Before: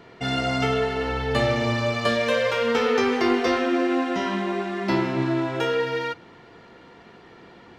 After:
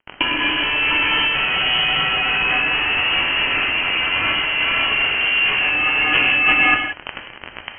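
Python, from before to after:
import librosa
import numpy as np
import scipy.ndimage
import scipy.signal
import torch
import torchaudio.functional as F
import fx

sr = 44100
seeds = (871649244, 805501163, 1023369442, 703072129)

y = x + 10.0 ** (-7.0 / 20.0) * np.pad(x, (int(612 * sr / 1000.0), 0))[:len(x)]
y = fx.fuzz(y, sr, gain_db=45.0, gate_db=-39.0)
y = fx.over_compress(y, sr, threshold_db=-18.0, ratio=-0.5)
y = fx.rev_gated(y, sr, seeds[0], gate_ms=200, shape='flat', drr_db=3.5)
y = fx.freq_invert(y, sr, carrier_hz=3100)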